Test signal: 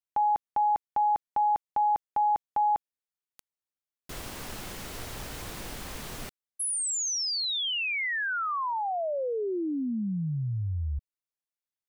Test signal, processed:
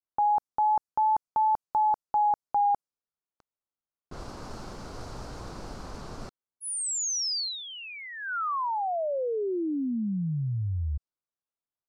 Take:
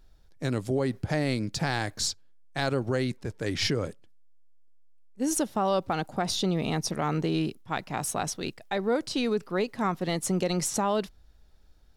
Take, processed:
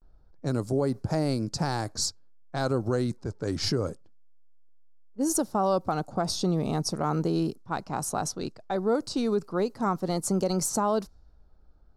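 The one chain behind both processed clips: low-pass opened by the level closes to 2300 Hz, open at -25 dBFS; wow and flutter 0.3 Hz 63 cents; band shelf 2500 Hz -12 dB 1.3 oct; gain +1 dB

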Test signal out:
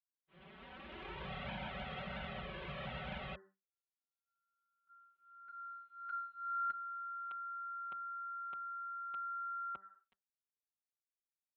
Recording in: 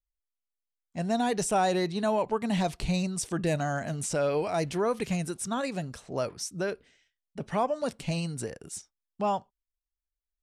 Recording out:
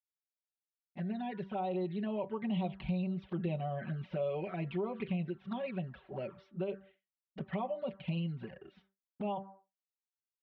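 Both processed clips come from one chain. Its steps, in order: opening faded in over 2.41 s; recorder AGC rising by 5.5 dB/s; HPF 57 Hz 24 dB/oct; de-hum 97.4 Hz, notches 20; expander -49 dBFS; steep low-pass 3400 Hz 48 dB/oct; comb 5.3 ms, depth 91%; compressor 2.5:1, threshold -25 dBFS; envelope flanger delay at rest 6.4 ms, full sweep at -24.5 dBFS; gain -6.5 dB

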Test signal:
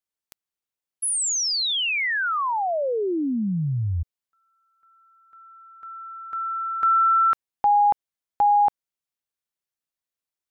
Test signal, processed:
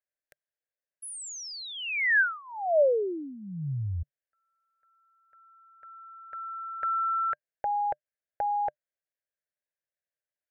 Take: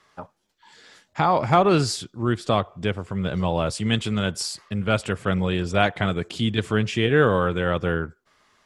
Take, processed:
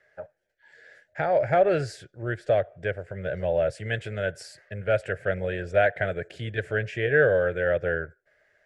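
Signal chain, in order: EQ curve 140 Hz 0 dB, 230 Hz -13 dB, 600 Hz +12 dB, 1100 Hz -19 dB, 1600 Hz +11 dB, 3400 Hz -9 dB; gain -6.5 dB

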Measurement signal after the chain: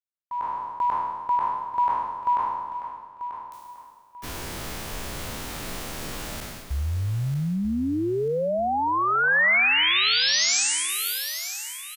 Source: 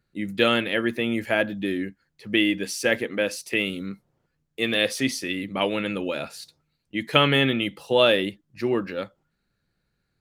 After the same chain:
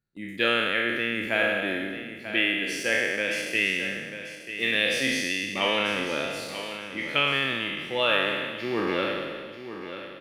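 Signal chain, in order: spectral trails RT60 1.72 s; gate -42 dBFS, range -7 dB; dynamic EQ 2200 Hz, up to +8 dB, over -35 dBFS, Q 0.91; AGC gain up to 10 dB; on a send: feedback echo 0.939 s, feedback 30%, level -11 dB; on the sum: gain -8.5 dB

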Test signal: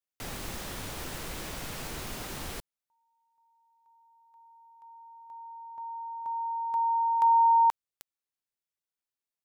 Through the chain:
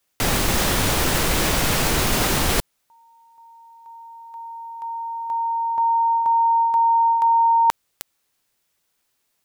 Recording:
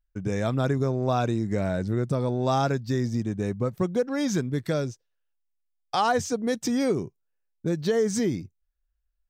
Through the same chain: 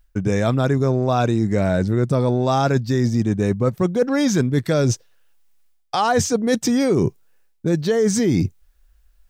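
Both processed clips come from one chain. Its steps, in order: reverse; compressor 10:1, threshold -37 dBFS; reverse; maximiser +22.5 dB; gain -1 dB

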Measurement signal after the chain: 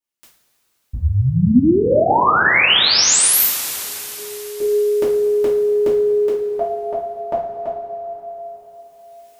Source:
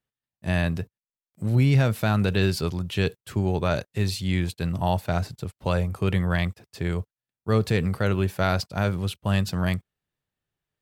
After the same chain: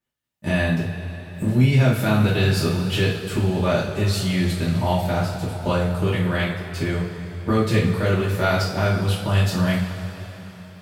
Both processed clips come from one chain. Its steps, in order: recorder AGC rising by 16 dB/s; two-slope reverb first 0.42 s, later 4.2 s, from -16 dB, DRR -8 dB; gain -4.5 dB

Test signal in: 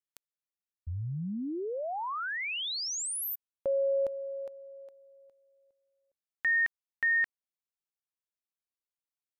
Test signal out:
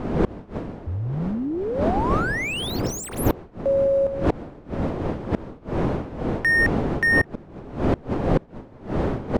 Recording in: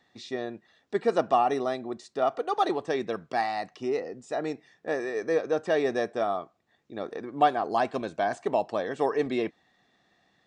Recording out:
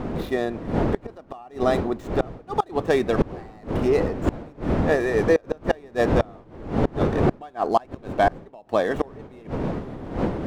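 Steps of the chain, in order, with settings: median filter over 9 samples; wind noise 400 Hz -27 dBFS; flipped gate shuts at -16 dBFS, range -28 dB; gain +8.5 dB

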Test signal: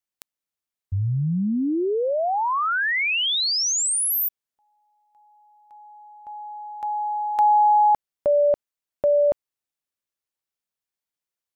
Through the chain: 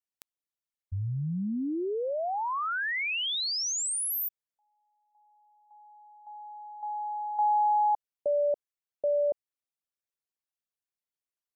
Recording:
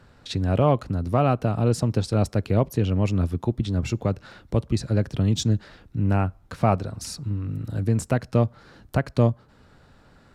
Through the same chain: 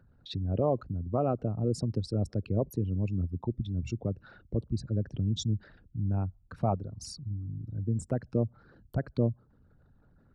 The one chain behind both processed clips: formant sharpening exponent 2; gain -8 dB

